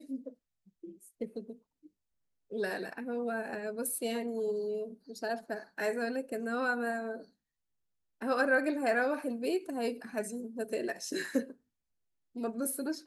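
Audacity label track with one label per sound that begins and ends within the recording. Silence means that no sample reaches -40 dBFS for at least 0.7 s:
2.520000	7.200000	sound
8.220000	11.510000	sound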